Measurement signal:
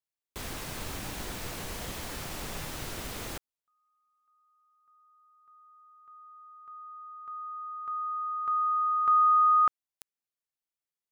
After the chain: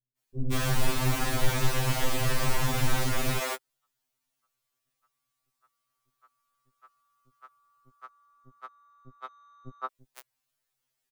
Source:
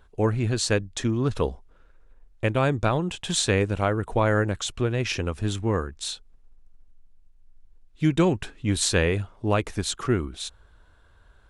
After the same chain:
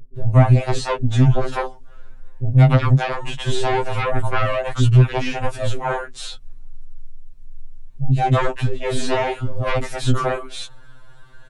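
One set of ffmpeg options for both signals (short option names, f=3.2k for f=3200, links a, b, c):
-filter_complex "[0:a]acrossover=split=2800[a][b];[b]acompressor=threshold=-42dB:ratio=4:attack=1:release=60[c];[a][c]amix=inputs=2:normalize=0,lowshelf=f=100:g=8.5,acrossover=split=230|950[d][e][f];[f]acompressor=threshold=-42dB:ratio=6:attack=37:release=22:knee=6:detection=rms[g];[d][e][g]amix=inputs=3:normalize=0,aeval=exprs='0.398*sin(PI/2*3.55*val(0)/0.398)':c=same,acrossover=split=360[h][i];[i]adelay=170[j];[h][j]amix=inputs=2:normalize=0,afftfilt=real='re*2.45*eq(mod(b,6),0)':imag='im*2.45*eq(mod(b,6),0)':win_size=2048:overlap=0.75,volume=-2dB"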